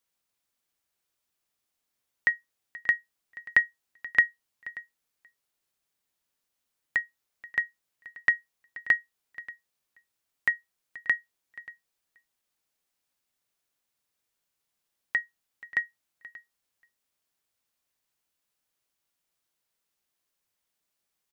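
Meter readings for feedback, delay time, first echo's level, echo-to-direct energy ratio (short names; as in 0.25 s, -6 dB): no steady repeat, 0.583 s, -20.0 dB, -20.0 dB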